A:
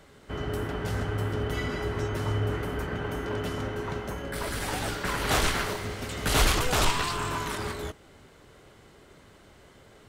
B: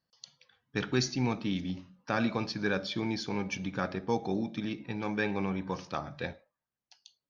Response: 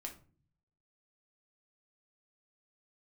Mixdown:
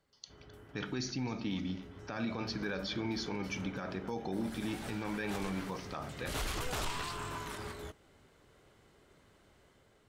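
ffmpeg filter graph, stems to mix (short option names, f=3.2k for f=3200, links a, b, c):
-filter_complex "[0:a]dynaudnorm=f=870:g=3:m=3dB,volume=-13dB,afade=t=in:st=2.13:d=0.51:silence=0.281838[a];[1:a]volume=-4.5dB,asplit=4[b][c][d][e];[c]volume=-3.5dB[f];[d]volume=-16dB[g];[e]apad=whole_len=444858[h];[a][h]sidechaincompress=threshold=-41dB:ratio=3:attack=28:release=543[i];[2:a]atrim=start_sample=2205[j];[f][j]afir=irnorm=-1:irlink=0[k];[g]aecho=0:1:262:1[l];[i][b][k][l]amix=inputs=4:normalize=0,alimiter=level_in=3.5dB:limit=-24dB:level=0:latency=1:release=33,volume=-3.5dB"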